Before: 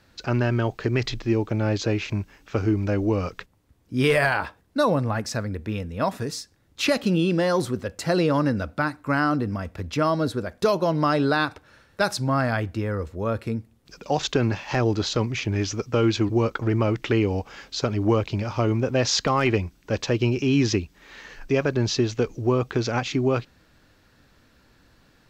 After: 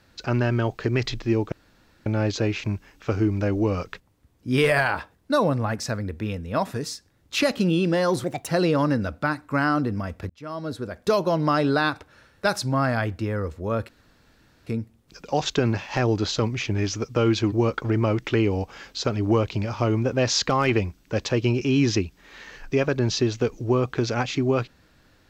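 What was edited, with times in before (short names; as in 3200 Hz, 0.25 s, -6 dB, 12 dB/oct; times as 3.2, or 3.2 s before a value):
1.52 insert room tone 0.54 s
7.7–8.03 speed 140%
9.85–10.69 fade in linear
13.44 insert room tone 0.78 s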